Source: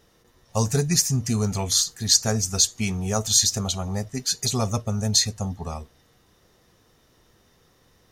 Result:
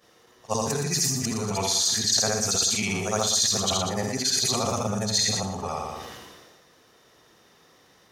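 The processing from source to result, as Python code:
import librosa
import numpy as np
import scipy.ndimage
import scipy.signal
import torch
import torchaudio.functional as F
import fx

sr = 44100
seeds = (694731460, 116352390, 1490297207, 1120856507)

p1 = fx.frame_reverse(x, sr, frame_ms=168.0)
p2 = fx.over_compress(p1, sr, threshold_db=-29.0, ratio=-0.5)
p3 = p1 + F.gain(torch.from_numpy(p2), 2.0).numpy()
p4 = fx.highpass(p3, sr, hz=430.0, slope=6)
p5 = fx.high_shelf(p4, sr, hz=7600.0, db=-7.5)
p6 = p5 + fx.echo_feedback(p5, sr, ms=119, feedback_pct=24, wet_db=-9, dry=0)
y = fx.sustainer(p6, sr, db_per_s=32.0)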